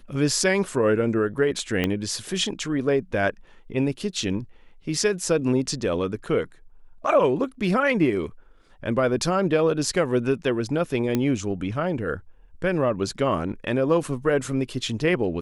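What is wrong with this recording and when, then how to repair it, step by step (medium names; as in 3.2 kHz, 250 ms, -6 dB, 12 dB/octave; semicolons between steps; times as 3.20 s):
1.84 s: pop -10 dBFS
11.15 s: pop -10 dBFS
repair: de-click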